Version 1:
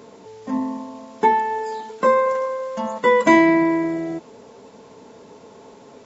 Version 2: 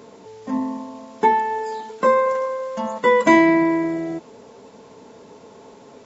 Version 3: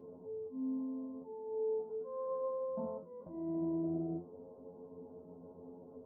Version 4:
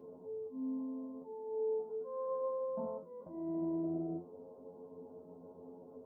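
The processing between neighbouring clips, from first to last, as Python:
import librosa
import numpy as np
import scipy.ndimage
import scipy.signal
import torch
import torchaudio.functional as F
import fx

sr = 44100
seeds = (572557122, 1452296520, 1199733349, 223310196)

y1 = x
y2 = fx.auto_swell(y1, sr, attack_ms=689.0)
y2 = scipy.ndimage.gaussian_filter1d(y2, 12.0, mode='constant')
y2 = fx.stiff_resonator(y2, sr, f0_hz=86.0, decay_s=0.3, stiffness=0.002)
y2 = y2 * librosa.db_to_amplitude(3.0)
y3 = fx.low_shelf(y2, sr, hz=190.0, db=-7.5)
y3 = y3 * librosa.db_to_amplitude(1.5)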